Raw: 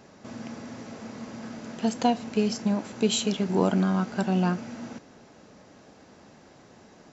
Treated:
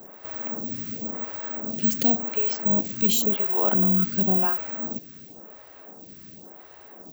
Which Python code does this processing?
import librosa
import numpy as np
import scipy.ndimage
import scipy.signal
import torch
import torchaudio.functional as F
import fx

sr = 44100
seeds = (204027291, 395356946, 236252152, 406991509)

p1 = fx.over_compress(x, sr, threshold_db=-29.0, ratio=-1.0)
p2 = x + (p1 * 10.0 ** (-2.0 / 20.0))
p3 = (np.kron(p2[::2], np.eye(2)[0]) * 2)[:len(p2)]
p4 = fx.stagger_phaser(p3, sr, hz=0.93)
y = p4 * 10.0 ** (-1.5 / 20.0)